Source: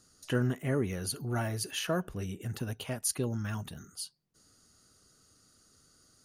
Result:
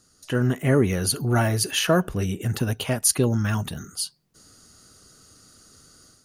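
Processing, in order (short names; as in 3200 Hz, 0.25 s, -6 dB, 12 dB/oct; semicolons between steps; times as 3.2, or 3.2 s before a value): AGC gain up to 8.5 dB; gain +3 dB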